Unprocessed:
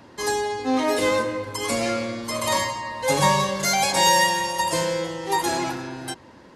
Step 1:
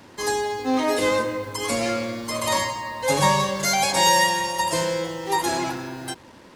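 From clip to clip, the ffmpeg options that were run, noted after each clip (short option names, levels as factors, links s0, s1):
-af "acrusher=bits=7:mix=0:aa=0.5"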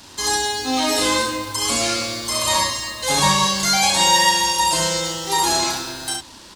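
-filter_complex "[0:a]acrossover=split=2800[s0][s1];[s1]acompressor=threshold=0.02:ratio=4:attack=1:release=60[s2];[s0][s2]amix=inputs=2:normalize=0,equalizer=f=125:t=o:w=1:g=-11,equalizer=f=250:t=o:w=1:g=-6,equalizer=f=500:t=o:w=1:g=-12,equalizer=f=1000:t=o:w=1:g=-3,equalizer=f=2000:t=o:w=1:g=-8,equalizer=f=4000:t=o:w=1:g=5,equalizer=f=8000:t=o:w=1:g=5,asplit=2[s3][s4];[s4]aecho=0:1:35|67:0.562|0.631[s5];[s3][s5]amix=inputs=2:normalize=0,volume=2.66"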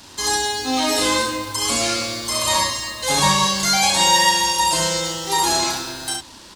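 -af anull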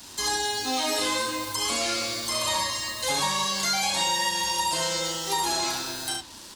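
-filter_complex "[0:a]highshelf=f=6800:g=11,acrossover=split=290|4900[s0][s1][s2];[s0]acompressor=threshold=0.0112:ratio=4[s3];[s1]acompressor=threshold=0.1:ratio=4[s4];[s2]acompressor=threshold=0.0282:ratio=4[s5];[s3][s4][s5]amix=inputs=3:normalize=0,flanger=delay=4:depth=6.2:regen=-73:speed=0.56:shape=triangular"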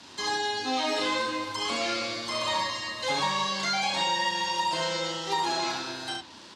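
-af "highpass=120,lowpass=4000"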